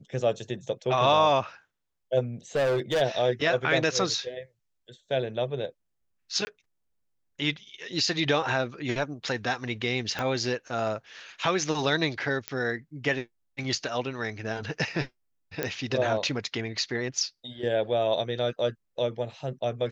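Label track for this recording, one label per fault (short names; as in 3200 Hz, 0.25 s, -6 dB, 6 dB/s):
2.550000	3.020000	clipped -21.5 dBFS
6.450000	6.470000	gap 20 ms
10.190000	10.190000	pop -16 dBFS
12.480000	12.480000	pop -13 dBFS
15.630000	15.630000	pop -13 dBFS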